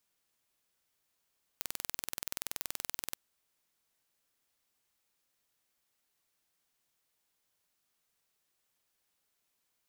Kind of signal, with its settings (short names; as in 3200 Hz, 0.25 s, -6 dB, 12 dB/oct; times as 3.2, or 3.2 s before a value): pulse train 21/s, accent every 0, -8.5 dBFS 1.53 s